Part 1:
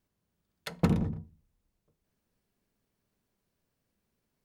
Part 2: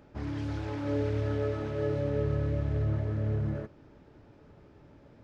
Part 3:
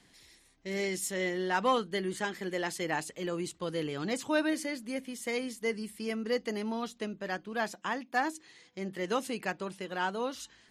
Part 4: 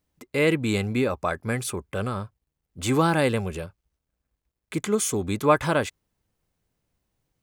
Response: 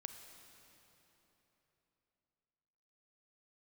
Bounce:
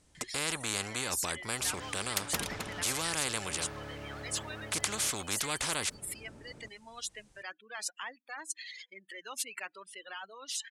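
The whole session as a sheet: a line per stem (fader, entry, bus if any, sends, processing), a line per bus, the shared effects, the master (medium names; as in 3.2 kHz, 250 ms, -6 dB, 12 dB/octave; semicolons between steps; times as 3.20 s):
+1.0 dB, 1.50 s, no send, echo send -15.5 dB, reverb removal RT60 0.53 s
-10.5 dB, 1.45 s, no send, no echo send, none
+1.0 dB, 0.15 s, no send, no echo send, spectral contrast enhancement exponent 2.2; reverb removal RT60 0.75 s; resonant high-pass 1.9 kHz, resonance Q 1.8
-2.0 dB, 0.00 s, no send, no echo send, low-pass 9.2 kHz 24 dB/octave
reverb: none
echo: delay 262 ms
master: peaking EQ 8.9 kHz +9 dB 1.2 oct; spectrum-flattening compressor 4:1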